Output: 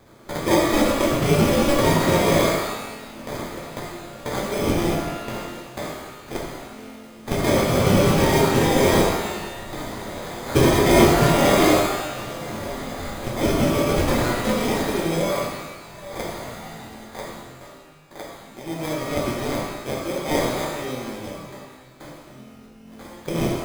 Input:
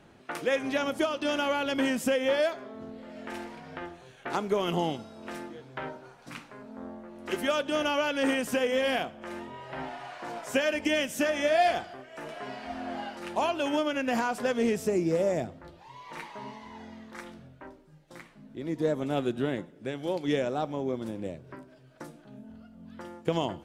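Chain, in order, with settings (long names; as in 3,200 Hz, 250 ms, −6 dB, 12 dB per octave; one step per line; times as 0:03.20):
high shelf with overshoot 1,700 Hz +12 dB, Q 3
sample-rate reduction 2,800 Hz, jitter 0%
reverb with rising layers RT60 1.1 s, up +12 semitones, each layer −8 dB, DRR −2.5 dB
level −3 dB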